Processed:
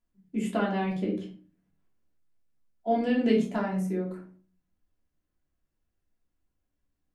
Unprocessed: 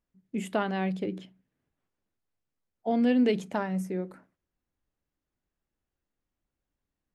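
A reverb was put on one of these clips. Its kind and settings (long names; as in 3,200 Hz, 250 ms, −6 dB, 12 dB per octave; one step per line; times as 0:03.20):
rectangular room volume 260 cubic metres, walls furnished, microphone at 3 metres
level −5 dB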